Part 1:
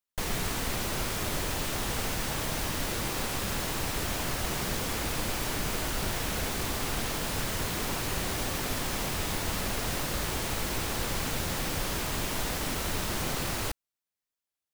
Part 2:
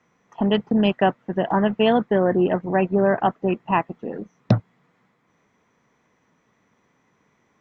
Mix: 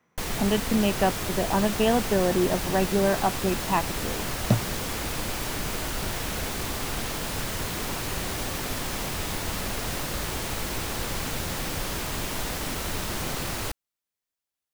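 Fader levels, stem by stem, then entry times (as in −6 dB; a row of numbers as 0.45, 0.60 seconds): +1.0, −4.5 decibels; 0.00, 0.00 seconds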